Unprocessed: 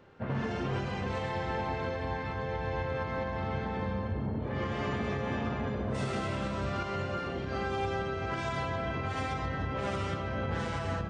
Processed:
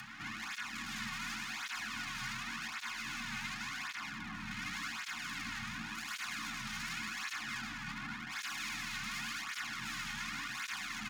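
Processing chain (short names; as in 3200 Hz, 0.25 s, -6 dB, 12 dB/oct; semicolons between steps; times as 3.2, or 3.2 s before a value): 7.59–8.32 delta modulation 16 kbps, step -53 dBFS; limiter -33.5 dBFS, peak gain reduction 9.5 dB; tapped delay 50/105/333/892 ms -19.5/-6/-6/-17.5 dB; tube stage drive 43 dB, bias 0.45; full-wave rectifier; frequency shift -34 Hz; Chebyshev band-stop 200–1200 Hz, order 2; reverb RT60 0.25 s, pre-delay 3 ms, DRR 3 dB; upward compressor, threshold -57 dBFS; tape flanging out of phase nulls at 0.89 Hz, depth 3.1 ms; gain +16 dB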